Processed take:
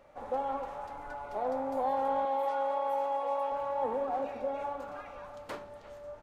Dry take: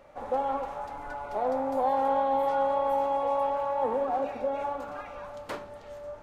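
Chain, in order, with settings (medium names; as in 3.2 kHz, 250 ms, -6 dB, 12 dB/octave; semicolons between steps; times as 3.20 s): 2.25–3.52 s: high-pass 360 Hz 12 dB/octave; speakerphone echo 350 ms, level -16 dB; trim -4.5 dB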